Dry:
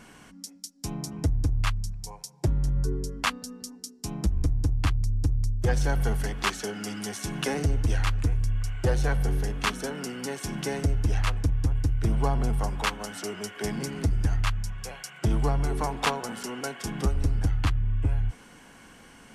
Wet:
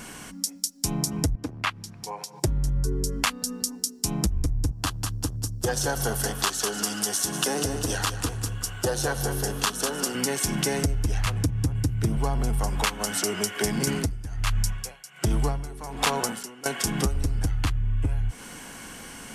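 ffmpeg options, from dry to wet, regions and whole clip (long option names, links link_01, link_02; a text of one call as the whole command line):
ffmpeg -i in.wav -filter_complex "[0:a]asettb=1/sr,asplit=3[link_01][link_02][link_03];[link_01]atrim=end=1.354[link_04];[link_02]atrim=start=1.35:end=2.4,asetpts=PTS-STARTPTS,afade=type=in:duration=0.004:curve=qsin,afade=type=out:start_time=1.046:duration=0.004:curve=qsin,highpass=140,acompressor=mode=upward:threshold=-34dB:ratio=2.5:attack=3.2:release=140:knee=2.83:detection=peak,acrossover=split=200 3700:gain=0.178 1 0.158[link_05][link_06][link_07];[link_05][link_06][link_07]amix=inputs=3:normalize=0[link_08];[link_03]atrim=start=2.396[link_09];[link_04][link_08]acrossfade=duration=0.004:curve1=hsin:curve2=qsin[link_10];[link_10][link_09]acrossfade=duration=0.004:curve1=qsin:curve2=hsin,asettb=1/sr,asplit=3[link_11][link_12][link_13];[link_11]atrim=end=4.714[link_14];[link_12]atrim=start=4.71:end=10.15,asetpts=PTS-STARTPTS,afade=type=in:duration=0.004:curve=qsin,afade=type=out:start_time=5.436:duration=0.004:curve=qsin,highpass=frequency=360:poles=1,equalizer=frequency=2200:width_type=o:width=0.42:gain=-12,aecho=1:1:194|388|582|776:0.299|0.107|0.0387|0.0139,atrim=end_sample=239904[link_15];[link_13]atrim=start=10.146[link_16];[link_14][link_15]acrossfade=duration=0.004:curve1=hsin:curve2=qsin[link_17];[link_17][link_16]acrossfade=duration=0.004:curve1=qsin:curve2=hsin,asettb=1/sr,asplit=3[link_18][link_19][link_20];[link_18]atrim=end=11.264[link_21];[link_19]atrim=start=11.26:end=12.17,asetpts=PTS-STARTPTS,afade=type=in:duration=0.004:curve=qsin,afade=type=out:start_time=0.906:duration=0.004:curve=qsin,highpass=130,lowshelf=frequency=220:gain=11.5[link_22];[link_20]atrim=start=12.166[link_23];[link_21][link_22]acrossfade=duration=0.004:curve1=hsin:curve2=qsin[link_24];[link_24][link_23]acrossfade=duration=0.004:curve1=qsin:curve2=hsin,asettb=1/sr,asplit=3[link_25][link_26][link_27];[link_25]atrim=end=13.874[link_28];[link_26]atrim=start=13.87:end=16.66,asetpts=PTS-STARTPTS,afade=type=in:duration=0.004:curve=qsin,afade=type=out:start_time=2.786:duration=0.004:curve=qsin,acontrast=89,aeval=exprs='val(0)*pow(10,-26*(0.5-0.5*cos(2*PI*1.3*n/s))/20)':channel_layout=same[link_29];[link_27]atrim=start=16.656[link_30];[link_28][link_29]acrossfade=duration=0.004:curve1=hsin:curve2=qsin[link_31];[link_31][link_30]acrossfade=duration=0.004:curve1=qsin:curve2=hsin,highshelf=frequency=5600:gain=10.5,acompressor=threshold=-30dB:ratio=5,volume=8dB" out.wav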